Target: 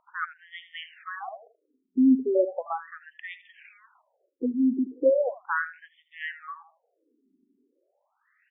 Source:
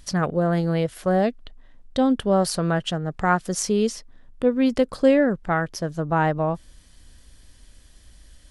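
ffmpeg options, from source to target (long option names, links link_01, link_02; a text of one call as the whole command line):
ffmpeg -i in.wav -af "afftfilt=real='re*pow(10,7/40*sin(2*PI*(1.6*log(max(b,1)*sr/1024/100)/log(2)-(-0.53)*(pts-256)/sr)))':imag='im*pow(10,7/40*sin(2*PI*(1.6*log(max(b,1)*sr/1024/100)/log(2)-(-0.53)*(pts-256)/sr)))':win_size=1024:overlap=0.75,aecho=1:1:80|160|240:0.237|0.0498|0.0105,aresample=8000,aresample=44100,aeval=exprs='0.501*(cos(1*acos(clip(val(0)/0.501,-1,1)))-cos(1*PI/2))+0.0112*(cos(2*acos(clip(val(0)/0.501,-1,1)))-cos(2*PI/2))+0.0251*(cos(3*acos(clip(val(0)/0.501,-1,1)))-cos(3*PI/2))':channel_layout=same,afftfilt=real='re*between(b*sr/1024,280*pow(2600/280,0.5+0.5*sin(2*PI*0.37*pts/sr))/1.41,280*pow(2600/280,0.5+0.5*sin(2*PI*0.37*pts/sr))*1.41)':imag='im*between(b*sr/1024,280*pow(2600/280,0.5+0.5*sin(2*PI*0.37*pts/sr))/1.41,280*pow(2600/280,0.5+0.5*sin(2*PI*0.37*pts/sr))*1.41)':win_size=1024:overlap=0.75" out.wav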